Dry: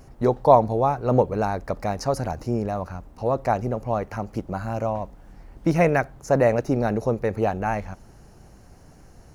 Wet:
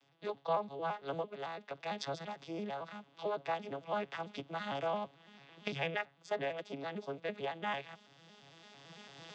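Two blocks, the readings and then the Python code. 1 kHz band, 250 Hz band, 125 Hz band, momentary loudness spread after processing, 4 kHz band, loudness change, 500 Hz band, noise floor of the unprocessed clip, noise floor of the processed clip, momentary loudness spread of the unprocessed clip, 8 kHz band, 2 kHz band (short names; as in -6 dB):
-14.5 dB, -19.5 dB, -23.5 dB, 17 LU, 0.0 dB, -16.0 dB, -16.5 dB, -49 dBFS, -67 dBFS, 12 LU, under -15 dB, -9.5 dB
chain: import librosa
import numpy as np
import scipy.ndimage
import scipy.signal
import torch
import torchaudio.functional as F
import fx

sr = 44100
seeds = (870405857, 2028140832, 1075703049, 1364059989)

y = fx.vocoder_arp(x, sr, chord='minor triad', root=49, every_ms=112)
y = fx.recorder_agc(y, sr, target_db=-9.5, rise_db_per_s=9.0, max_gain_db=30)
y = fx.bandpass_q(y, sr, hz=3300.0, q=4.2)
y = y * librosa.db_to_amplitude(10.5)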